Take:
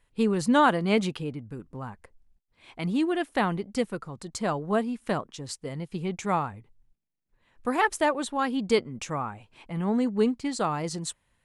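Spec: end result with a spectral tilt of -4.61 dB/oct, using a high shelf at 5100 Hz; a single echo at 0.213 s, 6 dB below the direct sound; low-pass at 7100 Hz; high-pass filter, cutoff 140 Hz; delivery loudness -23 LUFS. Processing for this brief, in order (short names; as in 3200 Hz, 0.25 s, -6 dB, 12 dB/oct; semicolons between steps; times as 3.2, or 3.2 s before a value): HPF 140 Hz; LPF 7100 Hz; high shelf 5100 Hz -4 dB; echo 0.213 s -6 dB; gain +4.5 dB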